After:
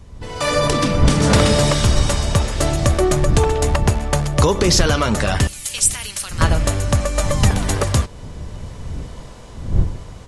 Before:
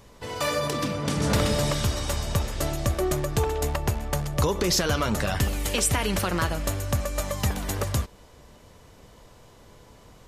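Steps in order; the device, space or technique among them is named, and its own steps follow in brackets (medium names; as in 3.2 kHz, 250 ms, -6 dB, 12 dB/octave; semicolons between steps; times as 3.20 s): 5.47–6.41 s: differentiator; smartphone video outdoors (wind noise 95 Hz; level rider gain up to 12 dB; AAC 96 kbps 24 kHz)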